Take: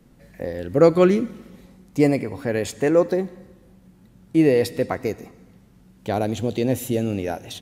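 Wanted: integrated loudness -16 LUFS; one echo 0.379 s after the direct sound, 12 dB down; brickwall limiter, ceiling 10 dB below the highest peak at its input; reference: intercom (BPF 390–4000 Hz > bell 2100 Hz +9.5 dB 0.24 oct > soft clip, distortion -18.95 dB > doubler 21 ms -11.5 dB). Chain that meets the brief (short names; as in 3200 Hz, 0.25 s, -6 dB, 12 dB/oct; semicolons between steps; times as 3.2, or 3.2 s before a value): limiter -12.5 dBFS; BPF 390–4000 Hz; bell 2100 Hz +9.5 dB 0.24 oct; echo 0.379 s -12 dB; soft clip -17 dBFS; doubler 21 ms -11.5 dB; gain +13 dB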